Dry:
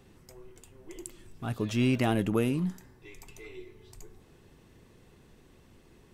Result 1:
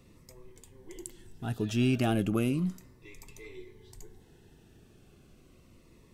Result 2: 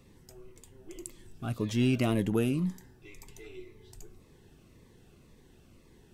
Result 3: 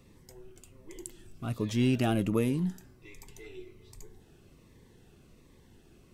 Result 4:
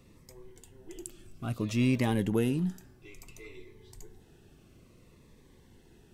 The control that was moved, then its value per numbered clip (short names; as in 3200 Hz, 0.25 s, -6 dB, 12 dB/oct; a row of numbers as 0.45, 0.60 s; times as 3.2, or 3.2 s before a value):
cascading phaser, rate: 0.34, 1.9, 1.3, 0.59 Hz